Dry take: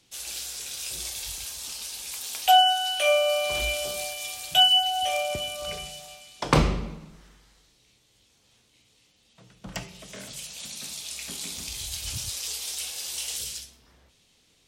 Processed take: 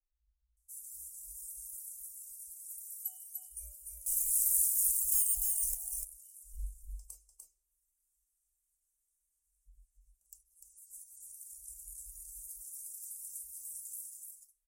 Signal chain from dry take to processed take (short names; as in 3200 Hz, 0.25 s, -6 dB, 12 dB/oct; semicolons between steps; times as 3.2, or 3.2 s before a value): bands offset in time lows, highs 0.57 s, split 230 Hz; reverb removal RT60 1.2 s; 4.06–5.75 sample leveller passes 5; inverse Chebyshev band-stop 100–3900 Hz, stop band 50 dB; on a send: echo 0.297 s -4 dB; on the sum: gain -4.5 dB